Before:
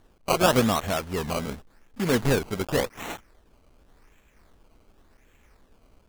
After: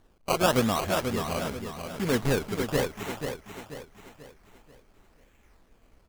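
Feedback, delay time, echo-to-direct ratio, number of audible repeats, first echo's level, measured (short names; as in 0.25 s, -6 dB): 41%, 0.487 s, -6.0 dB, 4, -7.0 dB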